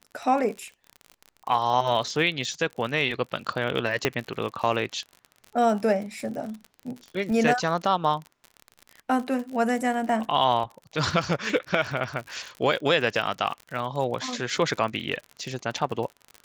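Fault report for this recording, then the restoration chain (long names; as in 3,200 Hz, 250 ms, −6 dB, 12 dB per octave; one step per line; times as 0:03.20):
surface crackle 46 per second −32 dBFS
0:04.05: click −7 dBFS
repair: click removal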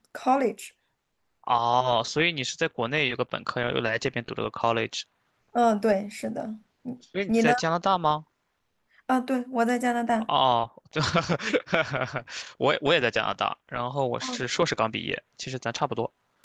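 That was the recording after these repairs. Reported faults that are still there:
none of them is left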